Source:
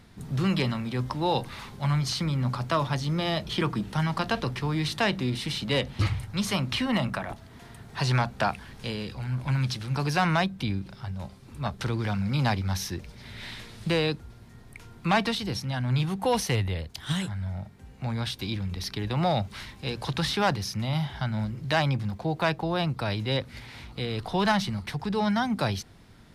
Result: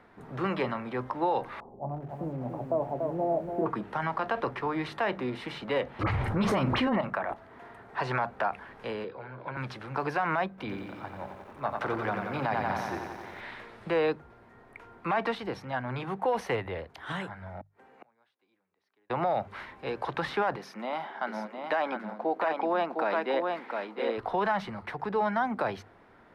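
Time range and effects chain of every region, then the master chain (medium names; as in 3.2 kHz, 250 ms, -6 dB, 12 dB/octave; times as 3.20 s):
1.60–3.66 s: elliptic low-pass 760 Hz, stop band 80 dB + bit-crushed delay 288 ms, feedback 35%, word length 8-bit, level -5.5 dB
6.03–7.01 s: bass shelf 480 Hz +10 dB + phase dispersion highs, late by 47 ms, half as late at 1.6 kHz + level flattener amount 70%
9.04–9.57 s: cabinet simulation 170–3900 Hz, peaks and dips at 240 Hz -8 dB, 470 Hz +5 dB, 780 Hz -6 dB, 1.2 kHz -5 dB, 1.9 kHz -7 dB, 2.8 kHz -8 dB + three bands compressed up and down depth 40%
10.49–13.41 s: hum notches 60/120/180/240 Hz + bit-crushed delay 89 ms, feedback 80%, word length 8-bit, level -6 dB
17.61–19.10 s: inverted gate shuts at -35 dBFS, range -34 dB + Bessel high-pass 300 Hz
20.56–24.18 s: brick-wall FIR high-pass 180 Hz + delay 708 ms -5 dB + tape noise reduction on one side only decoder only
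whole clip: three-band isolator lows -18 dB, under 340 Hz, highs -24 dB, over 2 kHz; hum notches 50/100/150 Hz; peak limiter -24 dBFS; trim +5 dB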